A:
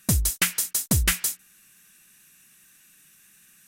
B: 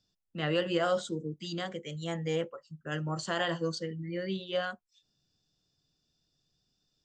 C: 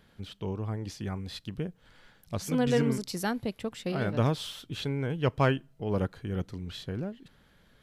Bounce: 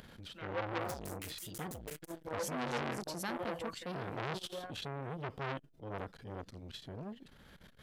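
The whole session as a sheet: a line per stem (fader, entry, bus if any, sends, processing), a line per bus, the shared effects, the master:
-11.5 dB, 0.80 s, no send, overload inside the chain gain 23.5 dB; auto duck -8 dB, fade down 1.90 s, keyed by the third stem
0.0 dB, 0.00 s, no send, drifting ripple filter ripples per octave 1.5, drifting -1.1 Hz, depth 10 dB; upward compressor, threshold -48 dBFS; wah-wah 0.83 Hz 320–1500 Hz, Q 2.1
-5.0 dB, 0.00 s, no send, upward compressor, threshold -38 dBFS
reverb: none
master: transient shaper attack -2 dB, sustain +5 dB; transformer saturation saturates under 2.2 kHz

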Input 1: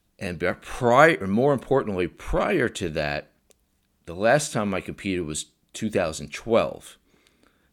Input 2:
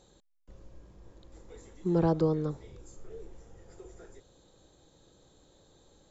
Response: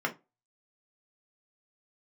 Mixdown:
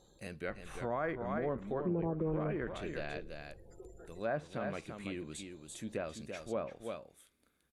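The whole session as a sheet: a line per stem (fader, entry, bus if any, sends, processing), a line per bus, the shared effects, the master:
-15.0 dB, 0.00 s, no send, echo send -7 dB, peaking EQ 11 kHz +12 dB 0.55 oct
-3.0 dB, 0.00 s, no send, no echo send, spectral gate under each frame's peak -25 dB strong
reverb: none
echo: delay 337 ms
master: low-pass that closes with the level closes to 1.6 kHz, closed at -31 dBFS; peak limiter -26 dBFS, peak gain reduction 9 dB

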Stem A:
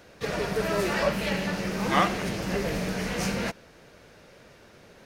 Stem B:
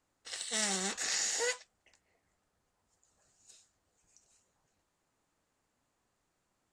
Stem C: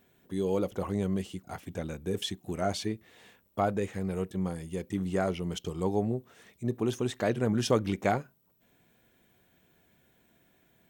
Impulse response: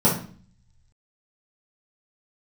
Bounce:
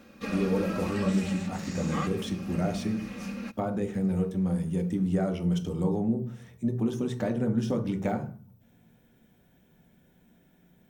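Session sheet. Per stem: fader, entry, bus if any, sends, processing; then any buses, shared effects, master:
-7.0 dB, 0.00 s, no send, comb 3.7 ms, depth 66%; small resonant body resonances 220/1200/2500 Hz, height 14 dB; auto duck -10 dB, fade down 1.40 s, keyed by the third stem
-9.0 dB, 0.55 s, no send, treble shelf 6 kHz -9.5 dB
-3.0 dB, 0.00 s, send -18.5 dB, de-esser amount 85%; bass shelf 73 Hz +8 dB; compression, threshold -28 dBFS, peak gain reduction 9 dB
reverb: on, RT60 0.45 s, pre-delay 3 ms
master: none

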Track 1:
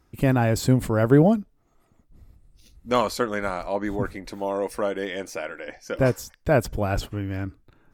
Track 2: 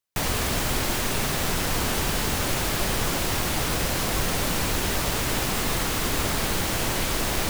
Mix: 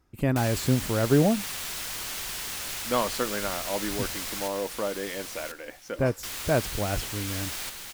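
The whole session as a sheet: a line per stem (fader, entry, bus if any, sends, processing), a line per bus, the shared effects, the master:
-4.5 dB, 0.00 s, no send, no echo send, none
-14.5 dB, 0.20 s, muted 4.48–6.23 s, no send, echo send -4.5 dB, tilt shelf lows -8.5 dB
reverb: none
echo: feedback delay 1040 ms, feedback 20%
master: none

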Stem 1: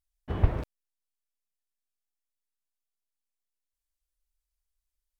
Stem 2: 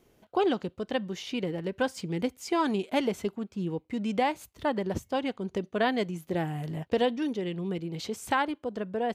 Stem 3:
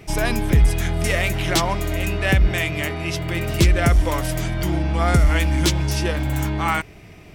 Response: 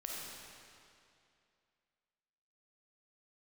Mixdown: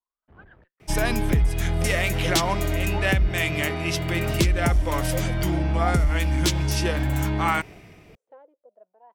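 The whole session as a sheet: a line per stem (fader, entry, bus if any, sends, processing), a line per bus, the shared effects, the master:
-3.5 dB, 0.00 s, no send, low-pass 3.2 kHz; compression, threshold -28 dBFS, peak gain reduction 13.5 dB; valve stage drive 37 dB, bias 0.6
+3.0 dB, 0.00 s, no send, bass shelf 280 Hz -9 dB; wah-wah 0.33 Hz 500–1800 Hz, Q 13
+1.0 dB, 0.80 s, no send, compression 6:1, threshold -19 dBFS, peak gain reduction 9 dB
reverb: none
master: three bands expanded up and down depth 40%

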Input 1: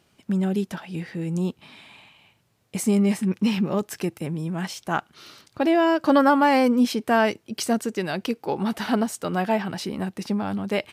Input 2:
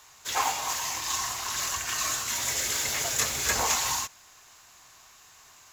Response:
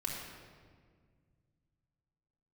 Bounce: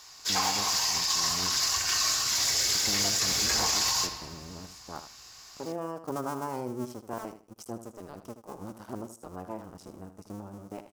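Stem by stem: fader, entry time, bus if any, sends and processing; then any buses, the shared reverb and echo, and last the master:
-13.5 dB, 0.00 s, no send, echo send -11 dB, cycle switcher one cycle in 2, muted; high-order bell 2.7 kHz -12.5 dB
-4.0 dB, 0.00 s, send -5.5 dB, no echo send, peaking EQ 4.9 kHz +13 dB 0.52 oct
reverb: on, RT60 1.8 s, pre-delay 3 ms
echo: feedback delay 78 ms, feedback 22%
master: peak limiter -16.5 dBFS, peak gain reduction 10 dB

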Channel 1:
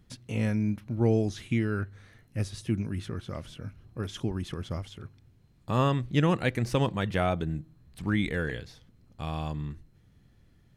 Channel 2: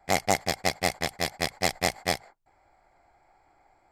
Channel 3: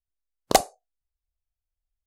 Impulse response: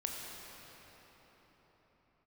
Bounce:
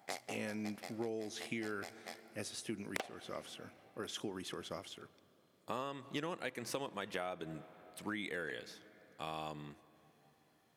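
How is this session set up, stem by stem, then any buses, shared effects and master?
-3.5 dB, 0.00 s, send -20.5 dB, treble shelf 7.9 kHz +6.5 dB; hard clipper -12.5 dBFS, distortion -35 dB
-3.5 dB, 0.00 s, send -23.5 dB, compression 2.5:1, threshold -33 dBFS, peak gain reduction 11 dB; auto duck -13 dB, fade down 0.30 s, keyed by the first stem
-2.0 dB, 2.45 s, send -21 dB, low-pass that closes with the level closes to 840 Hz, closed at -21 dBFS; compression, threshold -22 dBFS, peak gain reduction 9 dB; delay time shaken by noise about 1.6 kHz, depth 0.13 ms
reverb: on, pre-delay 18 ms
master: high-pass 340 Hz 12 dB/octave; compression 12:1, threshold -36 dBFS, peak gain reduction 15 dB

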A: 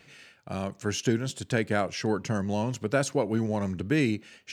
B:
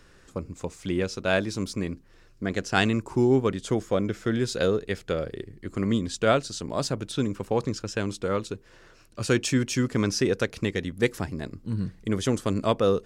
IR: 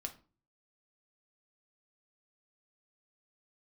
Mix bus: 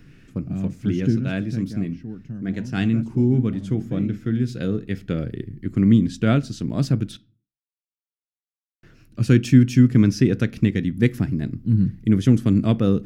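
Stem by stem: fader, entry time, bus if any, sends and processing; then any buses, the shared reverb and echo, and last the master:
1.17 s -5.5 dB -> 1.75 s -16.5 dB, 0.00 s, send -7.5 dB, tilt EQ -2 dB/octave
+1.5 dB, 0.00 s, muted 7.17–8.83 s, send -6.5 dB, peaking EQ 120 Hz +3.5 dB 0.42 oct; auto duck -9 dB, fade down 1.35 s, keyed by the first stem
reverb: on, RT60 0.35 s, pre-delay 4 ms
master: ten-band graphic EQ 125 Hz +5 dB, 250 Hz +8 dB, 500 Hz -8 dB, 1 kHz -11 dB, 4 kHz -5 dB, 8 kHz -11 dB

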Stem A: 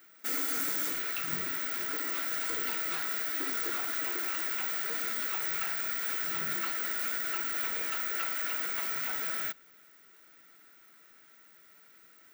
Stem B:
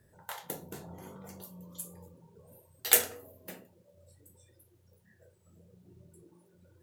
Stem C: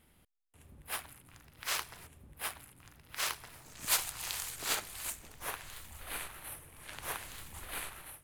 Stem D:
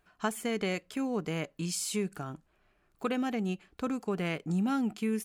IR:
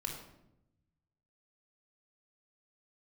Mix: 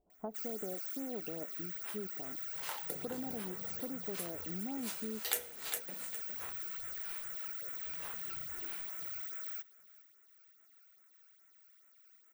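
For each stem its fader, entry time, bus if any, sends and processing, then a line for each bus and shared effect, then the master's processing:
-11.5 dB, 0.10 s, no send, echo send -23.5 dB, tilt EQ +2 dB/octave; phase shifter stages 12, 2.4 Hz, lowest notch 180–4900 Hz
+2.5 dB, 2.40 s, send -8 dB, echo send -8 dB, reverb removal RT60 1.6 s
-3.0 dB, 0.95 s, no send, no echo send, detune thickener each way 15 cents
0.0 dB, 0.00 s, no send, no echo send, local Wiener filter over 25 samples; Chebyshev low-pass 710 Hz, order 3; peaking EQ 140 Hz -14 dB 0.66 oct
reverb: on, RT60 0.85 s, pre-delay 22 ms
echo: feedback delay 407 ms, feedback 16%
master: bass shelf 130 Hz -6 dB; compression 2.5:1, threshold -40 dBFS, peak gain reduction 18.5 dB

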